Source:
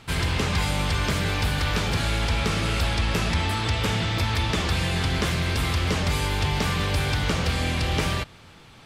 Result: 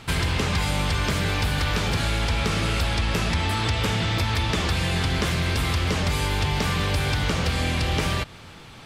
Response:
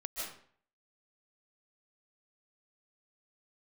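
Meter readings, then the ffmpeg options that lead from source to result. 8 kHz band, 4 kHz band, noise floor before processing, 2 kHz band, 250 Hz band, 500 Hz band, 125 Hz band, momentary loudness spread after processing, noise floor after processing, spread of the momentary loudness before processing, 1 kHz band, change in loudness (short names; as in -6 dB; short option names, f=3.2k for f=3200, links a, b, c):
+0.5 dB, +0.5 dB, -49 dBFS, +0.5 dB, +0.5 dB, +0.5 dB, +0.5 dB, 1 LU, -44 dBFS, 1 LU, +0.5 dB, +0.5 dB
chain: -af "acompressor=threshold=-27dB:ratio=2.5,volume=5dB"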